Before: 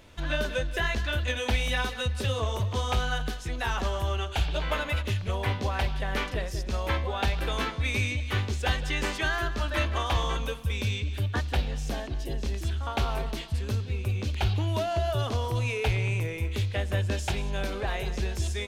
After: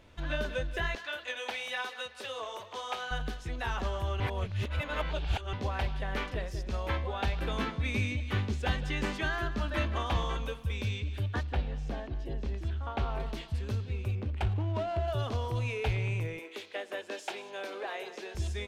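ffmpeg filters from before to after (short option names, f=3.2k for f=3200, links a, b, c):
-filter_complex "[0:a]asettb=1/sr,asplit=3[a][b][c];[a]atrim=end=0.954[d];[b]atrim=start=0.95:end=3.11,asetpts=PTS-STARTPTS,afade=t=in:d=0.004:c=qsin,afade=t=out:st=2.156:d=0.004:c=qsin,highpass=560[e];[c]atrim=start=3.106[f];[d][e]acrossfade=d=0.004:c1=hsin:c2=qsin[g];[g][f]acrossfade=d=0.004:c1=qsin:c2=hsin,asettb=1/sr,asplit=3[h][i][j];[h]atrim=end=7.414[k];[i]atrim=start=7.41:end=10.24,asetpts=PTS-STARTPTS,afade=t=in:d=0.004:c=qsin,afade=t=out:st=2.826:d=0.004:c=qsin,equalizer=f=200:w=1.5:g=7.5[l];[j]atrim=start=10.236[m];[k][l]acrossfade=d=0.004:c1=hsin:c2=qsin[n];[n][m]acrossfade=d=0.004:c1=qsin:c2=hsin,asettb=1/sr,asplit=3[o][p][q];[o]atrim=end=11.434[r];[p]atrim=start=11.43:end=13.2,asetpts=PTS-STARTPTS,afade=t=in:d=0.004:c=qsin,afade=t=out:st=1.766:d=0.004:c=qsin,lowpass=f=2.4k:p=1[s];[q]atrim=start=13.196[t];[r][s]acrossfade=d=0.004:c1=hsin:c2=qsin[u];[u][t]acrossfade=d=0.004:c1=qsin:c2=hsin,asettb=1/sr,asplit=3[v][w][x];[v]atrim=end=14.154[y];[w]atrim=start=14.15:end=15.08,asetpts=PTS-STARTPTS,afade=t=in:d=0.004:c=qsin,afade=t=out:st=0.926:d=0.004:c=qsin,adynamicsmooth=sensitivity=5:basefreq=900[z];[x]atrim=start=15.076[aa];[y][z]acrossfade=d=0.004:c1=hsin:c2=qsin[ab];[ab][aa]acrossfade=d=0.004:c1=qsin:c2=hsin,asettb=1/sr,asplit=3[ac][ad][ae];[ac]atrim=end=16.394[af];[ad]atrim=start=16.39:end=18.35,asetpts=PTS-STARTPTS,afade=t=in:d=0.004:c=qsin,afade=t=out:st=1.956:d=0.004:c=qsin,highpass=f=330:w=0.5412,highpass=f=330:w=1.3066[ag];[ae]atrim=start=18.346[ah];[af][ag]acrossfade=d=0.004:c1=hsin:c2=qsin[ai];[ai][ah]acrossfade=d=0.004:c1=qsin:c2=hsin,asplit=3[aj][ak][al];[aj]atrim=end=4.202[am];[ak]atrim=start=4.198:end=5.532,asetpts=PTS-STARTPTS,areverse[an];[al]atrim=start=5.528[ao];[am][an]acrossfade=d=0.004:c1=hsin:c2=hsin[ap];[ap][ao]acrossfade=d=0.004:c1=hsin:c2=hsin,highshelf=f=5.2k:g=-8.5,volume=-4dB"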